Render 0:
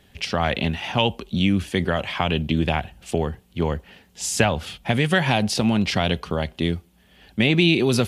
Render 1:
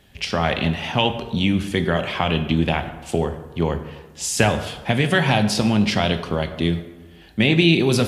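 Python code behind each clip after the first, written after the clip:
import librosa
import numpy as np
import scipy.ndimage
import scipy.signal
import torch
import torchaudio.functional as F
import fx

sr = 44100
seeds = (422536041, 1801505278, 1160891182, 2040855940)

y = fx.rev_plate(x, sr, seeds[0], rt60_s=1.2, hf_ratio=0.55, predelay_ms=0, drr_db=7.5)
y = y * 10.0 ** (1.0 / 20.0)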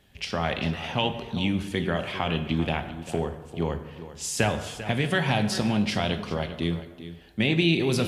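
y = x + 10.0 ** (-13.5 / 20.0) * np.pad(x, (int(395 * sr / 1000.0), 0))[:len(x)]
y = y * 10.0 ** (-6.5 / 20.0)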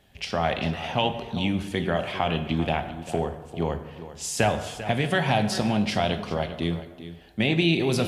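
y = fx.peak_eq(x, sr, hz=700.0, db=5.5, octaves=0.61)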